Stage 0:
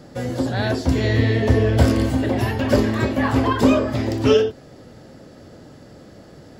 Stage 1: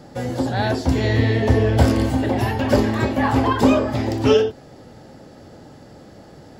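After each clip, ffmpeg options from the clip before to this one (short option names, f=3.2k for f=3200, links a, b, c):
-af "equalizer=f=830:t=o:w=0.25:g=7.5"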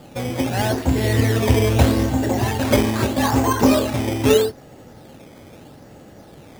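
-af "acrusher=samples=11:mix=1:aa=0.000001:lfo=1:lforange=11:lforate=0.79"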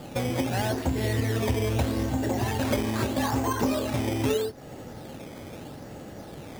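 -af "acompressor=threshold=-27dB:ratio=4,volume=2dB"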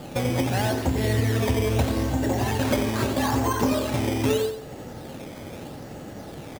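-af "aecho=1:1:89|178|267|356:0.335|0.117|0.041|0.0144,volume=2.5dB"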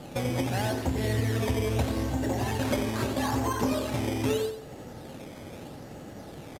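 -af "aresample=32000,aresample=44100,volume=-4.5dB"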